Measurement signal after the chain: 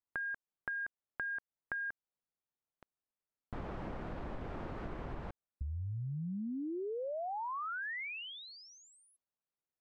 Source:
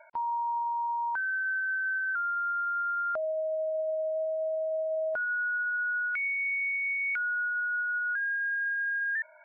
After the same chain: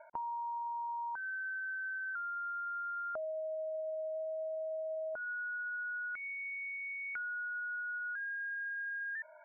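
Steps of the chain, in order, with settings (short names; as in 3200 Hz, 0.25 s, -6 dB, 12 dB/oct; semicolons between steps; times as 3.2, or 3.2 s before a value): LPF 1200 Hz 12 dB/oct; compressor, threshold -39 dBFS; gain +1 dB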